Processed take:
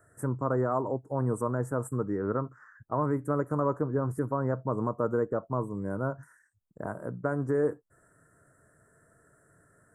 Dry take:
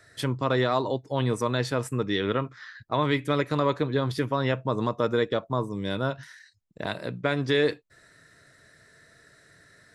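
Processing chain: Chebyshev band-stop 1.4–8 kHz, order 3; dynamic bell 2.3 kHz, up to -3 dB, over -42 dBFS, Q 0.9; trim -2.5 dB

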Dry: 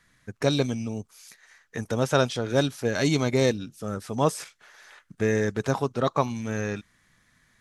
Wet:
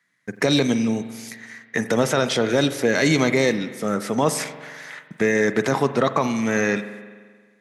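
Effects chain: high-pass 150 Hz 24 dB/octave; gate -58 dBFS, range -18 dB; peaking EQ 2 kHz +9 dB 0.31 oct; peak limiter -17.5 dBFS, peak gain reduction 11 dB; spring tank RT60 1.6 s, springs 44 ms, chirp 75 ms, DRR 11 dB; trim +9 dB

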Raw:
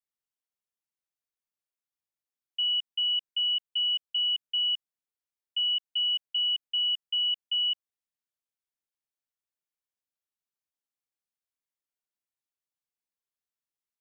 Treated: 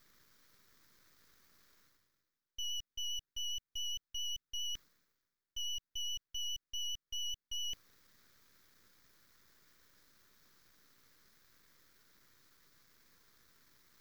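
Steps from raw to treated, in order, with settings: treble shelf 2.8 kHz -7.5 dB; static phaser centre 2.8 kHz, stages 6; vibrato 7.4 Hz 14 cents; half-wave rectifier; reverse; upward compressor, threshold -55 dBFS; reverse; trim +12 dB

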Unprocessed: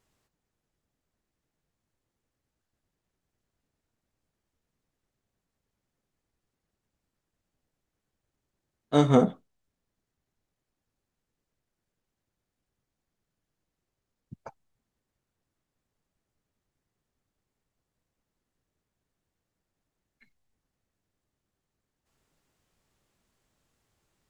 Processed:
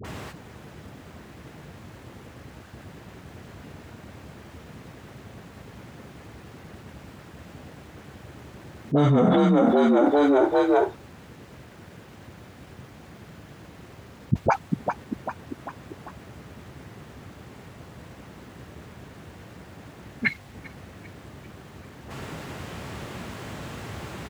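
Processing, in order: high-pass 67 Hz 24 dB/octave; tone controls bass +2 dB, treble -12 dB; in parallel at -2 dB: peak limiter -14.5 dBFS, peak gain reduction 7.5 dB; on the sum: phase dispersion highs, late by 46 ms, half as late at 680 Hz; on a send: frequency-shifting echo 395 ms, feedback 53%, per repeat +48 Hz, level -22 dB; on the sum: level flattener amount 100%; trim -5 dB

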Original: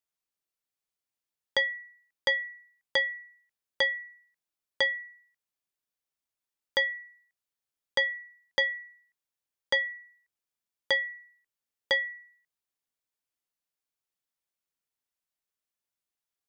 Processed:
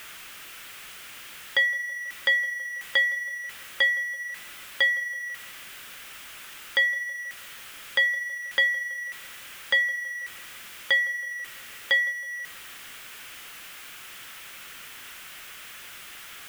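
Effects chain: jump at every zero crossing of -32 dBFS; high-order bell 2 kHz +10 dB; on a send: tape echo 163 ms, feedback 71%, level -17 dB, low-pass 2.2 kHz; on the sum: trim -6 dB

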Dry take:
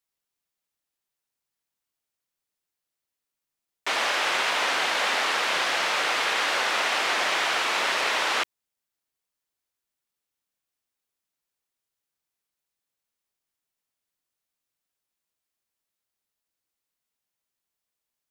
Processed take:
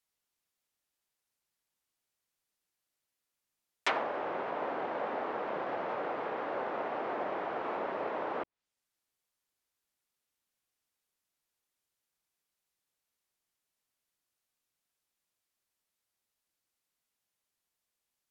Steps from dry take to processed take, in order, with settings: low-pass that closes with the level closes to 600 Hz, closed at -21.5 dBFS

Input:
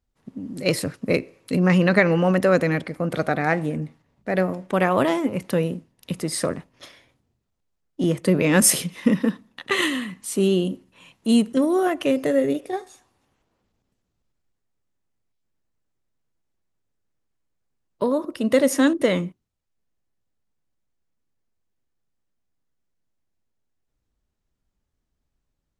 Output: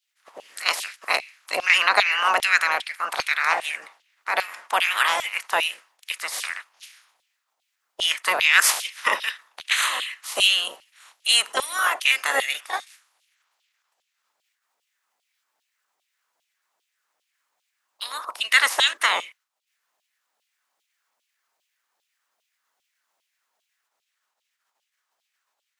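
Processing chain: spectral peaks clipped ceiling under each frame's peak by 25 dB; LFO high-pass saw down 2.5 Hz 680–3300 Hz; trim -2.5 dB

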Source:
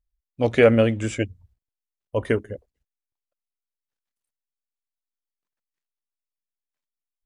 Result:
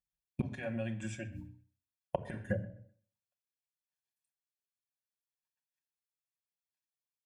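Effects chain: comb 1.2 ms, depth 89%; peak limiter -12 dBFS, peak gain reduction 7 dB; AM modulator 130 Hz, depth 15%; expander -31 dBFS; hum notches 60/120/180/240/300 Hz; inverted gate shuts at -20 dBFS, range -32 dB; high-pass 73 Hz; on a send at -2 dB: reverberation, pre-delay 5 ms; on the sum: compression 16:1, threshold -46 dBFS, peak gain reduction 17 dB; filtered feedback delay 127 ms, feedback 16%, low-pass 4.2 kHz, level -21 dB; tape noise reduction on one side only encoder only; trim +15.5 dB

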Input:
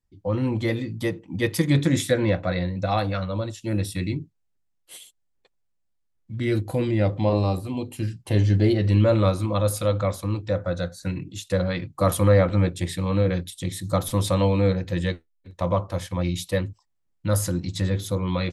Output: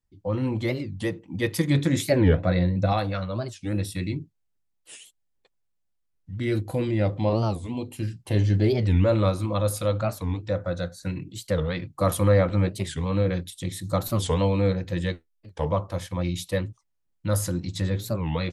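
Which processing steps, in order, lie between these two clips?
2.13–2.93 s: bass shelf 490 Hz +7 dB; warped record 45 rpm, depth 250 cents; trim -2 dB

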